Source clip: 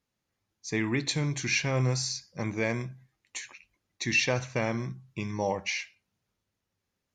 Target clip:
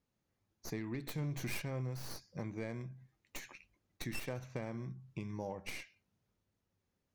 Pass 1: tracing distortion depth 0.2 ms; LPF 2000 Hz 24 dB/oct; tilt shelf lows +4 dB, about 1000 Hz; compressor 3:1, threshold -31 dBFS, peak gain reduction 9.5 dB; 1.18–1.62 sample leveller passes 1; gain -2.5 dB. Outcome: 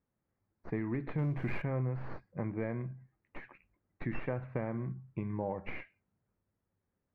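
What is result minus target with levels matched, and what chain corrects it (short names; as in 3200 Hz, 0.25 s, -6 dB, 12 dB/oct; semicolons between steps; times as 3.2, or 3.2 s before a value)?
compressor: peak gain reduction -5.5 dB; 2000 Hz band -3.5 dB
tracing distortion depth 0.2 ms; tilt shelf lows +4 dB, about 1000 Hz; compressor 3:1, threshold -39.5 dBFS, peak gain reduction 15 dB; 1.18–1.62 sample leveller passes 1; gain -2.5 dB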